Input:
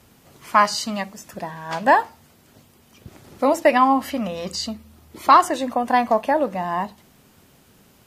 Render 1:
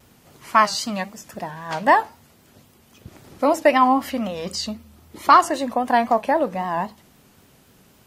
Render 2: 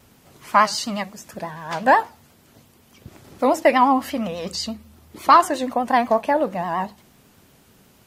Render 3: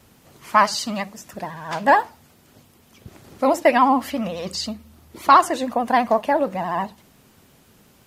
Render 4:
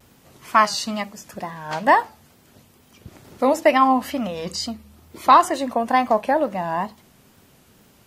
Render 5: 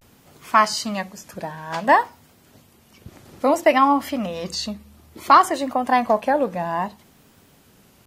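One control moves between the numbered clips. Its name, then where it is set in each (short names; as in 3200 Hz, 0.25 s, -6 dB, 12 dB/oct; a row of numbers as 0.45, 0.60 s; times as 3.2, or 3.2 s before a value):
vibrato, rate: 3.8, 8.3, 14, 2.2, 0.58 Hz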